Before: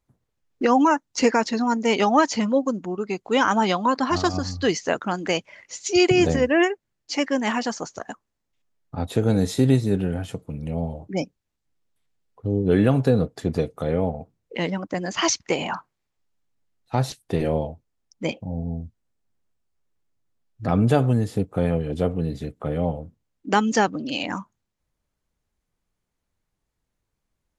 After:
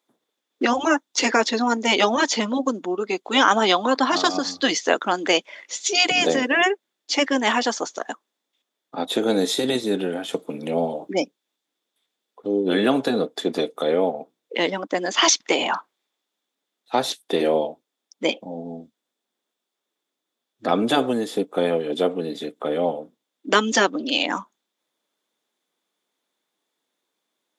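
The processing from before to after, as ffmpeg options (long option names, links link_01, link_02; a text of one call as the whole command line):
ffmpeg -i in.wav -filter_complex "[0:a]asettb=1/sr,asplit=3[link_01][link_02][link_03];[link_01]atrim=end=10.334[link_04];[link_02]atrim=start=10.33:end=11.13,asetpts=PTS-STARTPTS,afade=type=in:duration=0.004:curve=qsin,afade=type=out:start_time=0.796:duration=0.004:curve=qsin,acontrast=27[link_05];[link_03]atrim=start=11.126[link_06];[link_04][link_05]acrossfade=duration=0.004:curve1=hsin:curve2=qsin[link_07];[link_07][link_06]acrossfade=duration=0.004:curve1=qsin:curve2=hsin,highpass=frequency=270:width=0.5412,highpass=frequency=270:width=1.3066,afftfilt=real='re*lt(hypot(re,im),0.794)':imag='im*lt(hypot(re,im),0.794)':win_size=1024:overlap=0.75,equalizer=frequency=3500:width_type=o:width=0.21:gain=12.5,volume=5dB" out.wav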